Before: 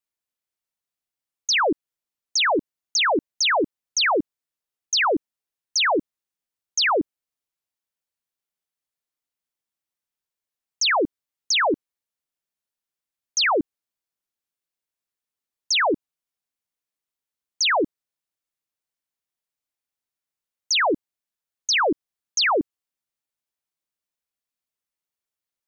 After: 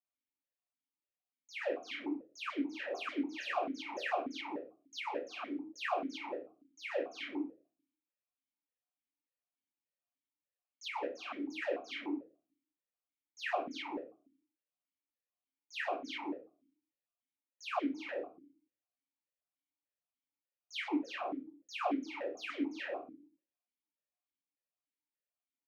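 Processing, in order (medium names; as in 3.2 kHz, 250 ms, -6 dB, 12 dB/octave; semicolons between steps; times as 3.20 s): on a send: multi-tap echo 340/375 ms -19.5/-18.5 dB; on the sum: waveshaping leveller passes 1; peak limiter -21.5 dBFS, peak gain reduction 7 dB; low-pass that closes with the level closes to 710 Hz, closed at -16.5 dBFS; Chebyshev shaper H 5 -15 dB, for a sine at -21 dBFS; simulated room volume 220 m³, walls furnished, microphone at 2.7 m; stepped vowel filter 6.8 Hz; trim -5 dB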